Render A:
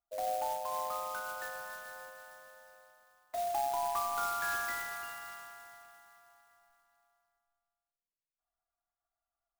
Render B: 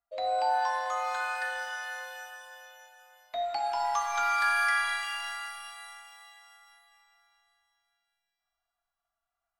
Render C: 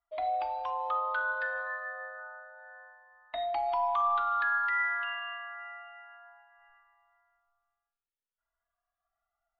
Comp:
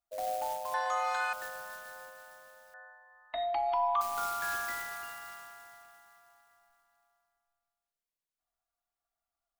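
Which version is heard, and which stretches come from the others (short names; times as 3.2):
A
0.74–1.33 from B
2.74–4.01 from C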